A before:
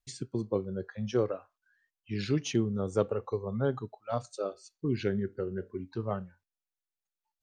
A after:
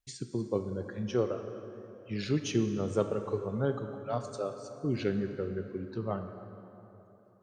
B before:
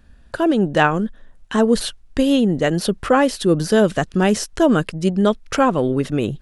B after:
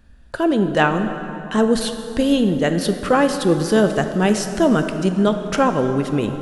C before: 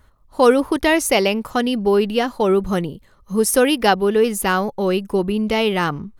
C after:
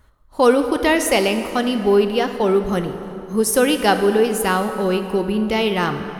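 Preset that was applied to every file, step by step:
dense smooth reverb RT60 3.3 s, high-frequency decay 0.6×, DRR 7 dB
level −1 dB

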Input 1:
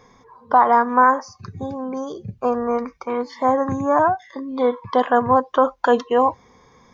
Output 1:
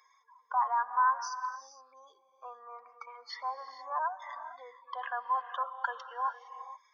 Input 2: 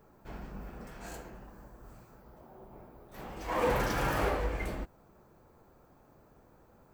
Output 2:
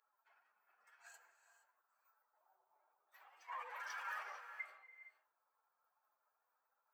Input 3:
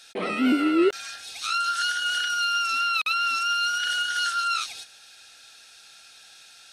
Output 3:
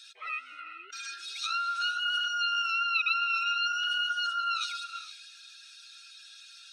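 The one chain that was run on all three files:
expanding power law on the bin magnitudes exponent 1.8
Bessel high-pass filter 1,900 Hz, order 4
reverb whose tail is shaped and stops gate 490 ms rising, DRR 10 dB

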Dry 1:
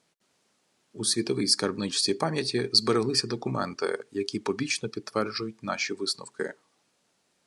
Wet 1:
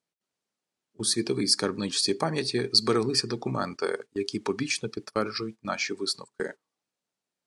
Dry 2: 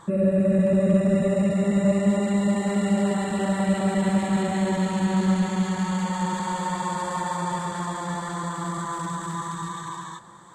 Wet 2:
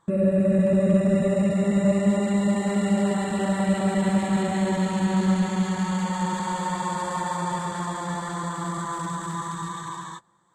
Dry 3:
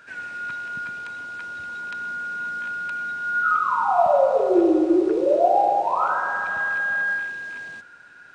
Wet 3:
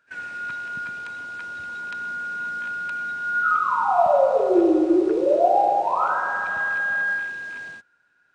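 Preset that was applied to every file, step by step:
noise gate −38 dBFS, range −17 dB

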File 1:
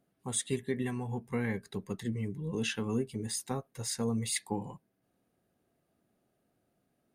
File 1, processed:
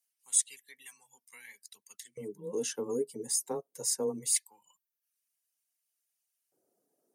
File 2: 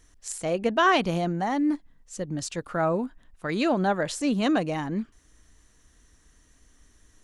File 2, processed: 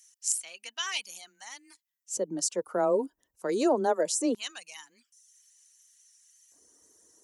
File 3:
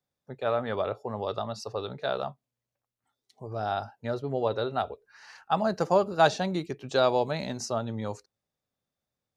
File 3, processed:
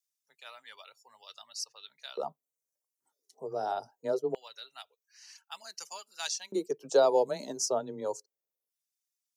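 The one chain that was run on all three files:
drawn EQ curve 100 Hz 0 dB, 1,100 Hz −15 dB, 2,500 Hz −24 dB, 3,600 Hz −23 dB, 5,700 Hz −9 dB
reverb reduction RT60 0.72 s
frequency shifter +14 Hz
high-shelf EQ 2,200 Hz +10 dB
auto-filter high-pass square 0.23 Hz 440–2,500 Hz
hollow resonant body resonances 940/3,000 Hz, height 7 dB
tape wow and flutter 16 cents
level +6.5 dB

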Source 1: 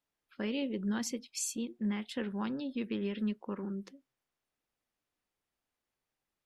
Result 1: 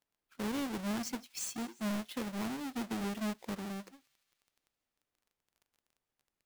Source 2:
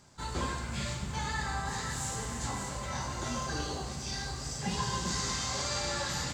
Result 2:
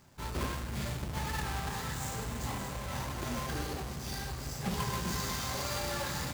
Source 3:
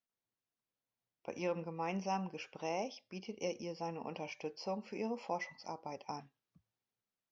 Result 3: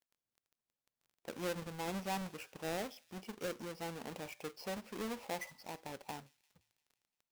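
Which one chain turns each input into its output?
each half-wave held at its own peak
surface crackle 17 per second −48 dBFS
delay with a high-pass on its return 173 ms, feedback 62%, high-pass 2,700 Hz, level −21.5 dB
level −6 dB

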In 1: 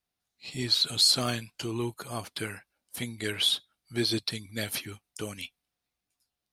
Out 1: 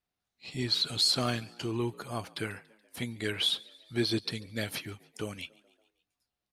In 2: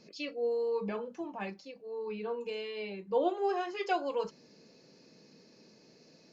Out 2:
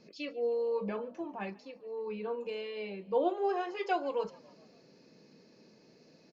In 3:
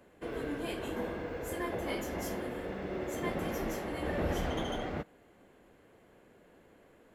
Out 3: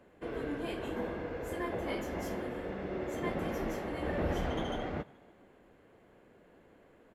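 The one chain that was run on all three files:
high-shelf EQ 4,900 Hz −9 dB
echo with shifted repeats 142 ms, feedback 59%, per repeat +55 Hz, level −24 dB

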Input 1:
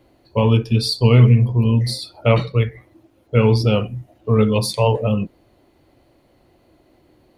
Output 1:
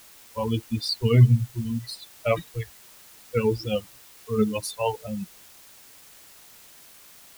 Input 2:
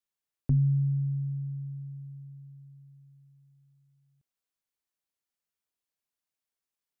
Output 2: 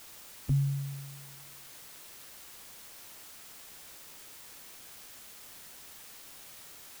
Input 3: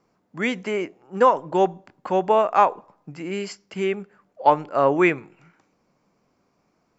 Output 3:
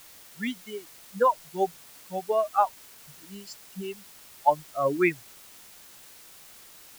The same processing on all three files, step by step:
spectral dynamics exaggerated over time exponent 3
bit-depth reduction 8 bits, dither triangular
level −2 dB

